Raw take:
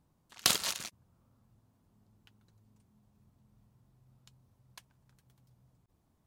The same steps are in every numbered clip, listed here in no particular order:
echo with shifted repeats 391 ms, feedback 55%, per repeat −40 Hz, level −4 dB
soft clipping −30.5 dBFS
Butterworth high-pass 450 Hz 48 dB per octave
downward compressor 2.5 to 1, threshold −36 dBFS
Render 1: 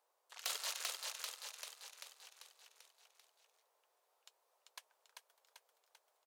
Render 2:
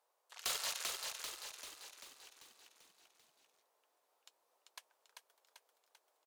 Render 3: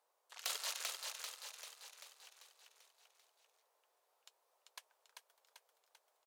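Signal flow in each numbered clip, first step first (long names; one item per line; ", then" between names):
downward compressor, then echo with shifted repeats, then soft clipping, then Butterworth high-pass
Butterworth high-pass, then soft clipping, then downward compressor, then echo with shifted repeats
downward compressor, then soft clipping, then echo with shifted repeats, then Butterworth high-pass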